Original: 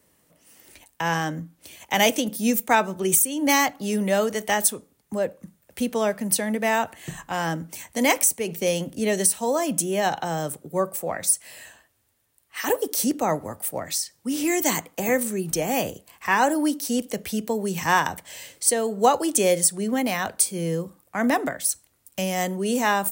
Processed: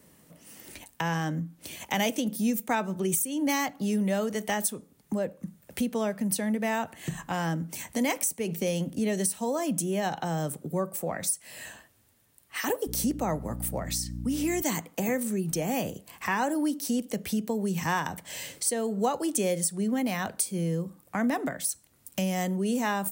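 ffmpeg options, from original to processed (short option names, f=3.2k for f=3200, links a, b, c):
-filter_complex "[0:a]asettb=1/sr,asplit=3[a][b][c];[a]atrim=end=12.874[d];[b]atrim=start=12.87:end=14.62,asetpts=PTS-STARTPTS,afade=t=in:d=0.004:c=qsin,afade=t=out:st=1.746:d=0.004:c=qsin,aeval=exprs='val(0)+0.0178*(sin(2*PI*60*n/s)+sin(2*PI*2*60*n/s)/2+sin(2*PI*3*60*n/s)/3+sin(2*PI*4*60*n/s)/4+sin(2*PI*5*60*n/s)/5)':c=same[e];[c]atrim=start=14.616[f];[d][e]acrossfade=d=0.004:c1=hsin:c2=qsin[g];[g][f]acrossfade=d=0.004:c1=qsin:c2=hsin,equalizer=f=180:w=0.99:g=7,acompressor=threshold=-38dB:ratio=2,volume=3.5dB"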